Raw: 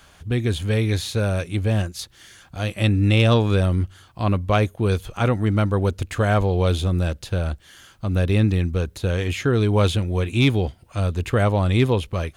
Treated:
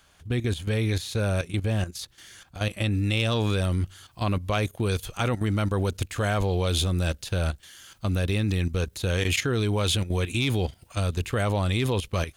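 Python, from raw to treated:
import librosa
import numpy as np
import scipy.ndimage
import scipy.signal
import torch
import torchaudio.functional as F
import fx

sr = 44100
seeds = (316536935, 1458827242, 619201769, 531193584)

y = fx.high_shelf(x, sr, hz=2400.0, db=fx.steps((0.0, 3.5), (2.91, 10.0)))
y = fx.level_steps(y, sr, step_db=12)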